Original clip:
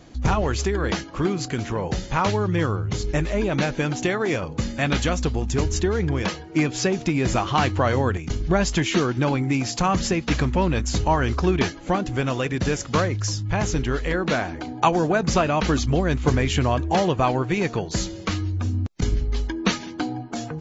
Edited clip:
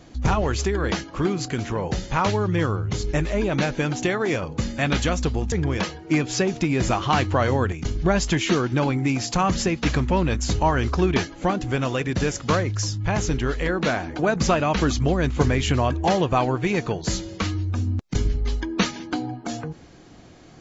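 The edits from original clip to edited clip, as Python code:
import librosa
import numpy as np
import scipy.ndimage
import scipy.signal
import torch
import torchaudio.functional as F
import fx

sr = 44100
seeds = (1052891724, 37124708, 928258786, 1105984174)

y = fx.edit(x, sr, fx.cut(start_s=5.52, length_s=0.45),
    fx.cut(start_s=14.64, length_s=0.42), tone=tone)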